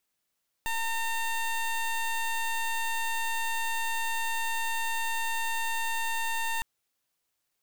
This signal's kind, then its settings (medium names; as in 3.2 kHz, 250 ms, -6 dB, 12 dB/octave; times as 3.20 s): pulse 910 Hz, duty 17% -29.5 dBFS 5.96 s